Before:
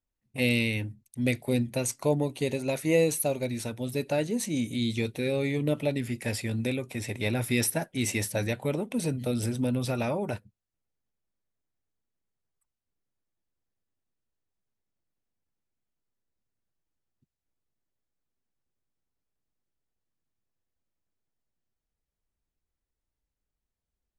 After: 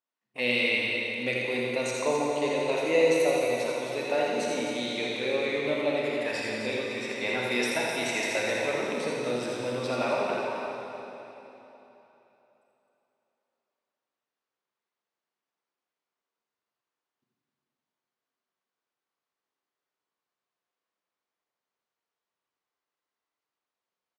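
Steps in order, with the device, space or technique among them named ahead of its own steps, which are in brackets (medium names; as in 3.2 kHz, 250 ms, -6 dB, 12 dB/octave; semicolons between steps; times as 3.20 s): station announcement (band-pass 450–4700 Hz; peaking EQ 1.1 kHz +6 dB 0.49 oct; loudspeakers at several distances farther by 28 m -5 dB, 89 m -9 dB; reverberation RT60 3.4 s, pre-delay 31 ms, DRR -2 dB)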